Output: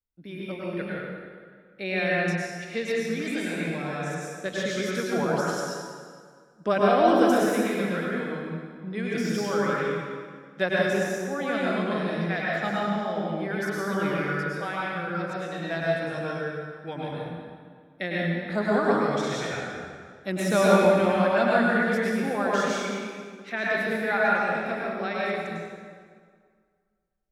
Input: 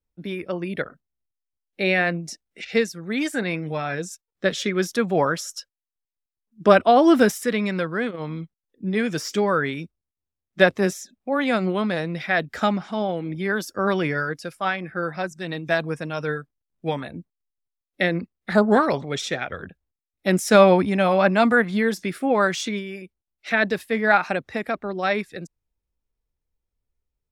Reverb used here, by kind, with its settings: plate-style reverb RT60 1.9 s, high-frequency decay 0.75×, pre-delay 90 ms, DRR -6 dB; trim -10.5 dB

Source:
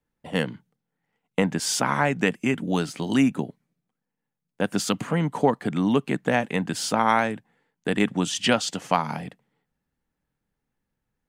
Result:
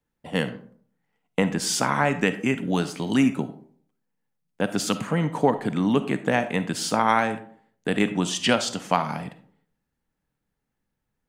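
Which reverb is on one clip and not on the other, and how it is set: algorithmic reverb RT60 0.55 s, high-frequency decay 0.45×, pre-delay 10 ms, DRR 11 dB

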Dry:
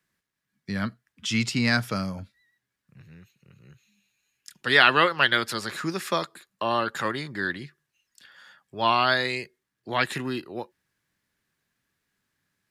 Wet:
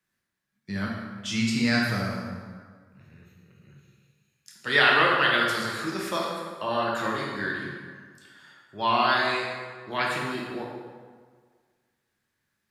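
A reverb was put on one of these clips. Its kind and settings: plate-style reverb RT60 1.7 s, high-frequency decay 0.65×, DRR -3.5 dB; trim -5.5 dB

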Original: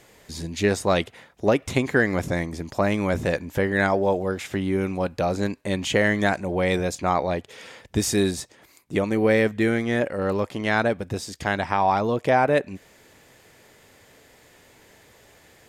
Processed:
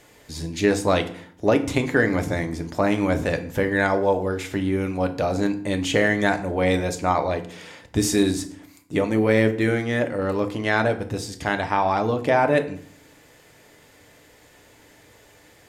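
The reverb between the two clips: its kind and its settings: FDN reverb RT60 0.56 s, low-frequency decay 1.5×, high-frequency decay 0.75×, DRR 6.5 dB

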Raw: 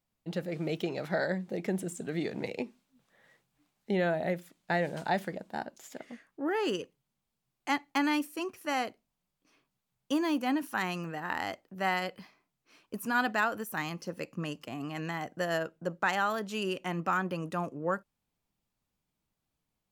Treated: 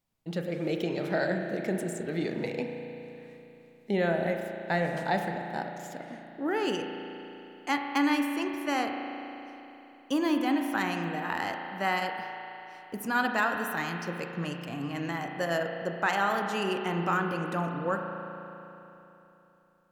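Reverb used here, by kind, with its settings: spring tank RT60 3.3 s, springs 35 ms, chirp 30 ms, DRR 3.5 dB; trim +1 dB

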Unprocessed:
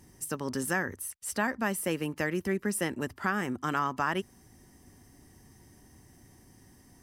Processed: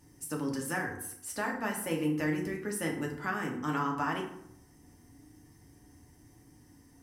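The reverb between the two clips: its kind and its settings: FDN reverb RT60 0.74 s, low-frequency decay 1.3×, high-frequency decay 0.6×, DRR -0.5 dB; trim -6 dB

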